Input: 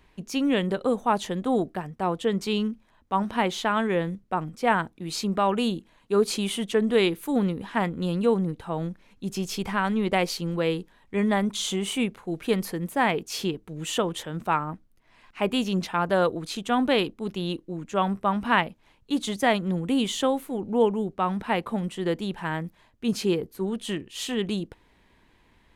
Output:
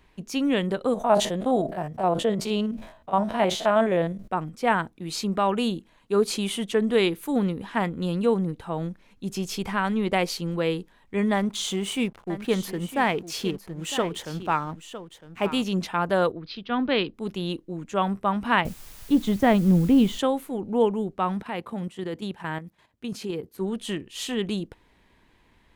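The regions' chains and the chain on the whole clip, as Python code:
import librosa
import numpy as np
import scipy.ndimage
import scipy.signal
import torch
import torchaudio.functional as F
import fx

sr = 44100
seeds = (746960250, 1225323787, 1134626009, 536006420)

y = fx.chain(x, sr, fx.spec_steps(hold_ms=50),
    fx.peak_eq(hz=640.0, db=13.0, octaves=0.39),
    fx.sustainer(db_per_s=96.0), at=(0.94, 4.28))
y = fx.chain(y, sr, fx.backlash(play_db=-42.0),
    fx.echo_single(ms=957, db=-13.0), at=(11.34, 15.63))
y = fx.chain(y, sr, fx.ellip_lowpass(hz=4900.0, order=4, stop_db=40),
    fx.peak_eq(hz=770.0, db=-4.5, octaves=0.76),
    fx.band_widen(depth_pct=40), at=(16.32, 17.14))
y = fx.chain(y, sr, fx.riaa(side='playback'),
    fx.quant_dither(seeds[0], bits=8, dither='triangular'), at=(18.65, 20.19))
y = fx.chain(y, sr, fx.highpass(hz=61.0, slope=12),
    fx.level_steps(step_db=10), at=(21.4, 23.58))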